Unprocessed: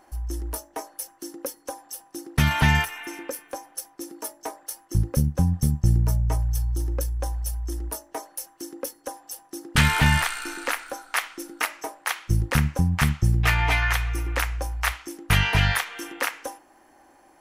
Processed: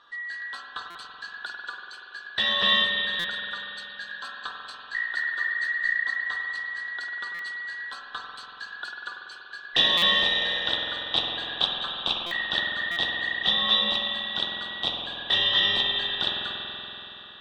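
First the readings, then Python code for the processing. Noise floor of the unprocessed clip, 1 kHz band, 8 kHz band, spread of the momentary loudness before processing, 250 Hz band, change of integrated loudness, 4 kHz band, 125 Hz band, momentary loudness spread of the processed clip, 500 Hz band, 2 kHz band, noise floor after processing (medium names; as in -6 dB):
-57 dBFS, -5.0 dB, -19.5 dB, 16 LU, -13.0 dB, +0.5 dB, +10.5 dB, -26.0 dB, 18 LU, -3.0 dB, +1.0 dB, -44 dBFS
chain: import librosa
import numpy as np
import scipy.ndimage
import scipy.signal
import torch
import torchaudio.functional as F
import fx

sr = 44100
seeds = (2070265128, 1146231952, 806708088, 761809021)

y = fx.band_invert(x, sr, width_hz=2000)
y = fx.notch(y, sr, hz=2100.0, q=5.3)
y = fx.dynamic_eq(y, sr, hz=1800.0, q=1.1, threshold_db=-35.0, ratio=4.0, max_db=-8)
y = fx.ladder_lowpass(y, sr, hz=3800.0, resonance_pct=70)
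y = fx.low_shelf(y, sr, hz=480.0, db=-10.0)
y = fx.rider(y, sr, range_db=4, speed_s=2.0)
y = fx.rev_spring(y, sr, rt60_s=3.8, pass_ms=(47,), chirp_ms=75, drr_db=-1.0)
y = fx.buffer_glitch(y, sr, at_s=(0.9, 3.19, 7.34, 9.97, 12.26, 12.91), block=256, repeats=8)
y = y * 10.0 ** (6.0 / 20.0)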